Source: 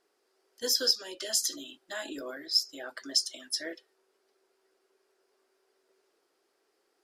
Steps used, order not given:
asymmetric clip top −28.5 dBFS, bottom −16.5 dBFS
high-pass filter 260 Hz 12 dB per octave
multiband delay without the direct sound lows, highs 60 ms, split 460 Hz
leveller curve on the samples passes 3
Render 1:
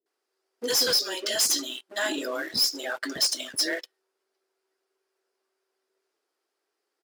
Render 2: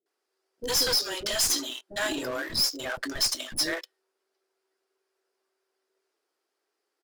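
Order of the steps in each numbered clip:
asymmetric clip, then multiband delay without the direct sound, then leveller curve on the samples, then high-pass filter
leveller curve on the samples, then high-pass filter, then asymmetric clip, then multiband delay without the direct sound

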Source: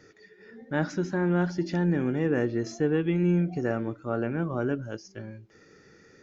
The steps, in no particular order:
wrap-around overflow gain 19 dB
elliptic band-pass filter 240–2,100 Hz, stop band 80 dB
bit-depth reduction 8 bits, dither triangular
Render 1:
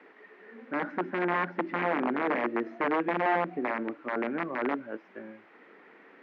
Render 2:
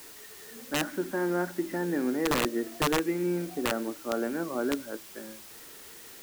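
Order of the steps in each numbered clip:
wrap-around overflow, then bit-depth reduction, then elliptic band-pass filter
elliptic band-pass filter, then wrap-around overflow, then bit-depth reduction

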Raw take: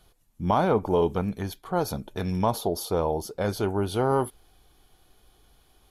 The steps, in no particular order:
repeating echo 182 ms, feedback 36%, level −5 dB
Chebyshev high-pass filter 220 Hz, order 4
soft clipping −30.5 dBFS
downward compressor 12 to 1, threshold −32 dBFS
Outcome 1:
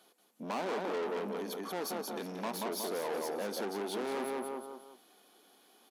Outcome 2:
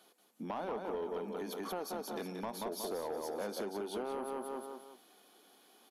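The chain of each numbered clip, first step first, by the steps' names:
repeating echo, then soft clipping, then downward compressor, then Chebyshev high-pass filter
repeating echo, then downward compressor, then Chebyshev high-pass filter, then soft clipping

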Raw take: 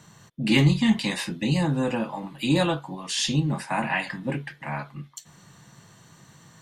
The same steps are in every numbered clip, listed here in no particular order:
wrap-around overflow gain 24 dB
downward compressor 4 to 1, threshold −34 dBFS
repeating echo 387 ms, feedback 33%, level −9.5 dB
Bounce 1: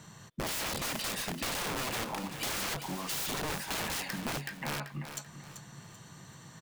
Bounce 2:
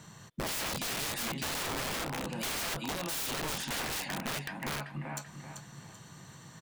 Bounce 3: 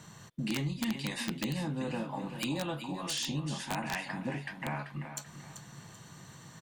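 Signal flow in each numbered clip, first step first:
wrap-around overflow, then downward compressor, then repeating echo
repeating echo, then wrap-around overflow, then downward compressor
downward compressor, then repeating echo, then wrap-around overflow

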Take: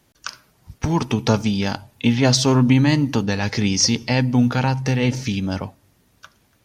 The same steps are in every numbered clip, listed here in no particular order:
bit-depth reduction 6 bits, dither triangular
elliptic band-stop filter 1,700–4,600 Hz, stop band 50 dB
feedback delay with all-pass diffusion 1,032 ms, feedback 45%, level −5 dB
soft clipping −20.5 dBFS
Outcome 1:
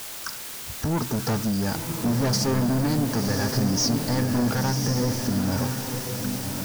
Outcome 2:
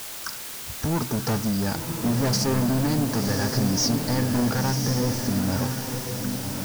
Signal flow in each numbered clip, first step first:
elliptic band-stop filter, then bit-depth reduction, then soft clipping, then feedback delay with all-pass diffusion
elliptic band-stop filter, then soft clipping, then feedback delay with all-pass diffusion, then bit-depth reduction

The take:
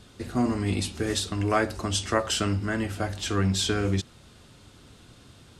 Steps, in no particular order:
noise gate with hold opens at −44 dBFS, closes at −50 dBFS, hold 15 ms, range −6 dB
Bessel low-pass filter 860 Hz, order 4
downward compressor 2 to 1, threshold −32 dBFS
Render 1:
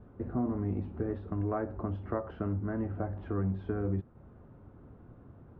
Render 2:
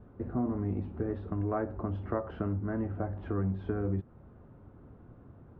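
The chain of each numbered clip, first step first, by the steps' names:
downward compressor, then noise gate with hold, then Bessel low-pass filter
noise gate with hold, then Bessel low-pass filter, then downward compressor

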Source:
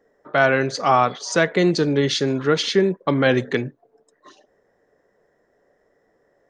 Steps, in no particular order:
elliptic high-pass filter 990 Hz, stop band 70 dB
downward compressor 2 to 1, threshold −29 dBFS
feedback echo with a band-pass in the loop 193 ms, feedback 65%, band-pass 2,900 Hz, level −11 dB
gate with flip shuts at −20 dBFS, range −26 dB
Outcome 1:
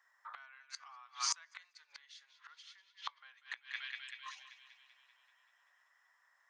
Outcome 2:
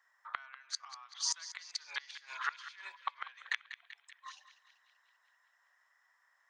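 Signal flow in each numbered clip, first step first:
feedback echo with a band-pass in the loop, then downward compressor, then gate with flip, then elliptic high-pass filter
elliptic high-pass filter, then downward compressor, then gate with flip, then feedback echo with a band-pass in the loop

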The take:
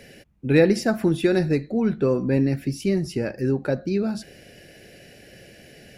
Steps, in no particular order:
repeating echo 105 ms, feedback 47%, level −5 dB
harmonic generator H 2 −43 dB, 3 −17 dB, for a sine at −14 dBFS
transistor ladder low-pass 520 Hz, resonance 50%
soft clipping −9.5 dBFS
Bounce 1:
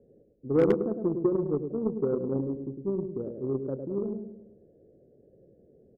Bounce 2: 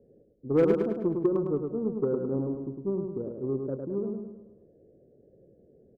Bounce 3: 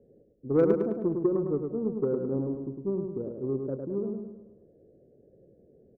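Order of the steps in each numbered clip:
transistor ladder low-pass, then soft clipping, then repeating echo, then harmonic generator
transistor ladder low-pass, then harmonic generator, then repeating echo, then soft clipping
transistor ladder low-pass, then soft clipping, then harmonic generator, then repeating echo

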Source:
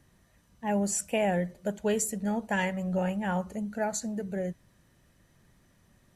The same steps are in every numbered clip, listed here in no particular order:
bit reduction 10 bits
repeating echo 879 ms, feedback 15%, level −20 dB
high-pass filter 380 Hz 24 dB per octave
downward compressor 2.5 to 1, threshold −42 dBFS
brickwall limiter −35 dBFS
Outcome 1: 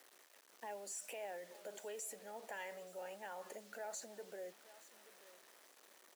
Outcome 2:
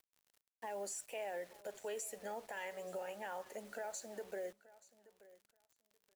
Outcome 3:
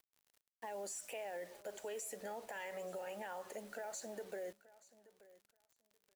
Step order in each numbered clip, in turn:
brickwall limiter, then repeating echo, then downward compressor, then bit reduction, then high-pass filter
high-pass filter, then downward compressor, then brickwall limiter, then bit reduction, then repeating echo
high-pass filter, then brickwall limiter, then downward compressor, then bit reduction, then repeating echo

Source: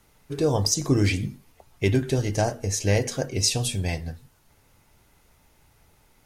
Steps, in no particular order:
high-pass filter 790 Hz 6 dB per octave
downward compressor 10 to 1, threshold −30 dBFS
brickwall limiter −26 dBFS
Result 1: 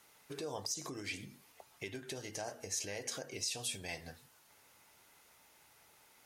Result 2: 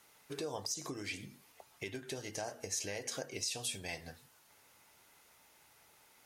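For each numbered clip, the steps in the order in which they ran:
downward compressor, then brickwall limiter, then high-pass filter
downward compressor, then high-pass filter, then brickwall limiter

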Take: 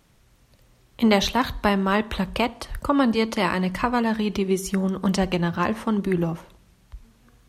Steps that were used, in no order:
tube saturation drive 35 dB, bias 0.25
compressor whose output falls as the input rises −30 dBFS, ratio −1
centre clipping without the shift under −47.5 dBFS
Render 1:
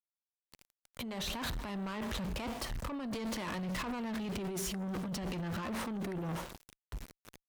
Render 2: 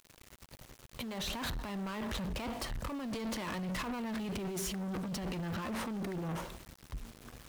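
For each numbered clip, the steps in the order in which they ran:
centre clipping without the shift, then compressor whose output falls as the input rises, then tube saturation
compressor whose output falls as the input rises, then tube saturation, then centre clipping without the shift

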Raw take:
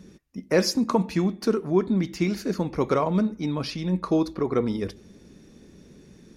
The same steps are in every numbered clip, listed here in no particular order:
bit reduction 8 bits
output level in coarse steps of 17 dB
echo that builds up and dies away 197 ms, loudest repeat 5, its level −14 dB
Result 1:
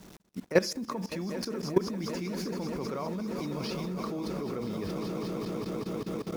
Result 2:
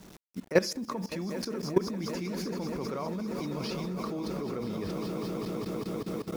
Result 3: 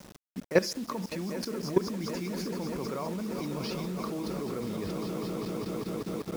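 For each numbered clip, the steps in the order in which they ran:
bit reduction, then echo that builds up and dies away, then output level in coarse steps
echo that builds up and dies away, then bit reduction, then output level in coarse steps
echo that builds up and dies away, then output level in coarse steps, then bit reduction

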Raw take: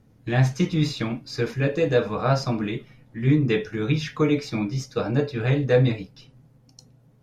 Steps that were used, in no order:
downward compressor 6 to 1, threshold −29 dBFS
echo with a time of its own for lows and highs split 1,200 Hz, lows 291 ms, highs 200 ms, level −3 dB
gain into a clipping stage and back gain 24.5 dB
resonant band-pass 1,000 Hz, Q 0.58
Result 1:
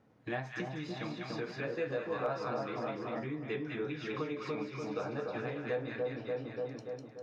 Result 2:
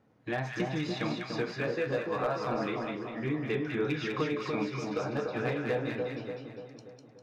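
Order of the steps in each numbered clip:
echo with a time of its own for lows and highs, then downward compressor, then resonant band-pass, then gain into a clipping stage and back
resonant band-pass, then downward compressor, then gain into a clipping stage and back, then echo with a time of its own for lows and highs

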